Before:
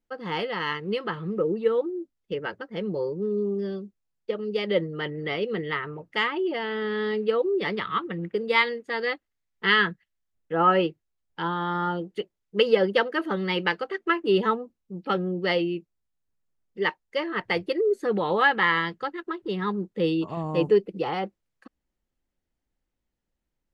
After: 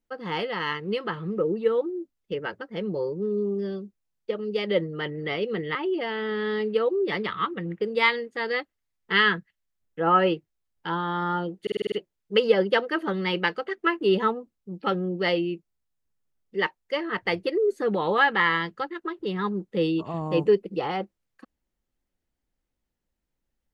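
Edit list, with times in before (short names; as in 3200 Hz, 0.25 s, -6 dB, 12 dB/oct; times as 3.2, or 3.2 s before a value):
5.75–6.28 cut
12.15 stutter 0.05 s, 7 plays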